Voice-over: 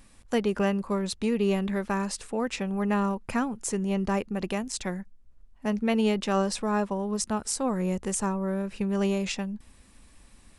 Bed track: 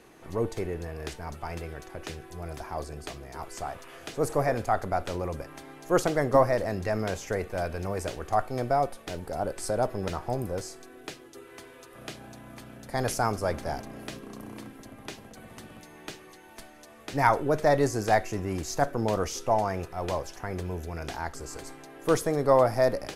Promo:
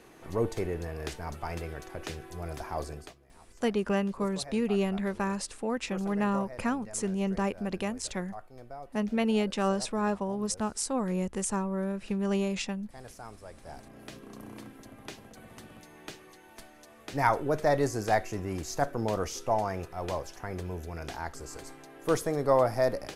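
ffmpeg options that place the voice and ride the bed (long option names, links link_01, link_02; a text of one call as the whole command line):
ffmpeg -i stem1.wav -i stem2.wav -filter_complex "[0:a]adelay=3300,volume=-2.5dB[link_01];[1:a]volume=16dB,afade=type=out:start_time=2.9:duration=0.25:silence=0.112202,afade=type=in:start_time=13.54:duration=0.89:silence=0.158489[link_02];[link_01][link_02]amix=inputs=2:normalize=0" out.wav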